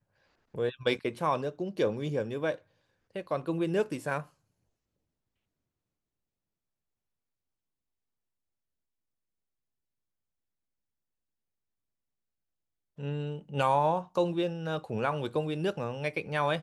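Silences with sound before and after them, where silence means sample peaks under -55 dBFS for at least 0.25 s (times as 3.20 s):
2.61–3.11 s
4.29–12.98 s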